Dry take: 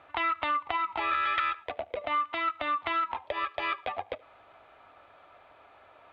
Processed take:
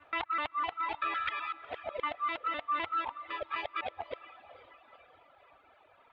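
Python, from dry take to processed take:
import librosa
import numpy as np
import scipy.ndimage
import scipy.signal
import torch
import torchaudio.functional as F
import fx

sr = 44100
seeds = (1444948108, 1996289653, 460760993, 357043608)

y = fx.local_reverse(x, sr, ms=127.0)
y = fx.echo_diffused(y, sr, ms=471, feedback_pct=47, wet_db=-10)
y = fx.dereverb_blind(y, sr, rt60_s=1.6)
y = y * librosa.db_to_amplitude(-3.5)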